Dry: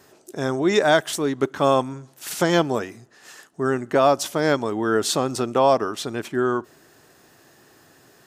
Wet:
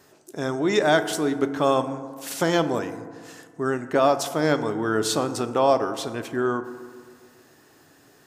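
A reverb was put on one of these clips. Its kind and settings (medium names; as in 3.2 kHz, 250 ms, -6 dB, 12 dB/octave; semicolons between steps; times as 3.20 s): FDN reverb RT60 1.9 s, low-frequency decay 1.05×, high-frequency decay 0.35×, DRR 9.5 dB; trim -2.5 dB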